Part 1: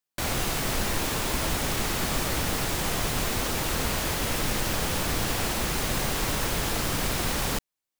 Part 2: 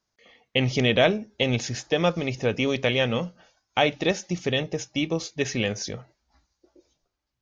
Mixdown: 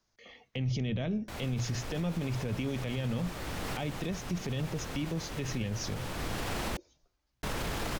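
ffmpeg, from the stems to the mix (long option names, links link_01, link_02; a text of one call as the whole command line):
ffmpeg -i stem1.wav -i stem2.wav -filter_complex "[0:a]aemphasis=mode=reproduction:type=cd,adelay=1100,volume=-3dB,asplit=3[link_01][link_02][link_03];[link_01]atrim=end=6.77,asetpts=PTS-STARTPTS,afade=type=out:start_time=6.766:duration=0.004:curve=hsin[link_04];[link_02]atrim=start=6.77:end=7.43,asetpts=PTS-STARTPTS,volume=0[link_05];[link_03]atrim=start=7.43,asetpts=PTS-STARTPTS,afade=type=in:duration=0.004:curve=hsin[link_06];[link_04][link_05][link_06]concat=n=3:v=0:a=1[link_07];[1:a]bandreject=frequency=60:width_type=h:width=6,bandreject=frequency=120:width_type=h:width=6,acrossover=split=230[link_08][link_09];[link_09]acompressor=threshold=-39dB:ratio=3[link_10];[link_08][link_10]amix=inputs=2:normalize=0,lowshelf=frequency=84:gain=7.5,volume=1.5dB,asplit=2[link_11][link_12];[link_12]apad=whole_len=400940[link_13];[link_07][link_13]sidechaincompress=threshold=-35dB:ratio=5:attack=16:release=906[link_14];[link_14][link_11]amix=inputs=2:normalize=0,alimiter=level_in=1dB:limit=-24dB:level=0:latency=1:release=30,volume=-1dB" out.wav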